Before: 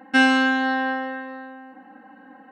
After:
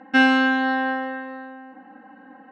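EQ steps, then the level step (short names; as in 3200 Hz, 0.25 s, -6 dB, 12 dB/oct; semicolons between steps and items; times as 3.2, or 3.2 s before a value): air absorption 110 m; +1.0 dB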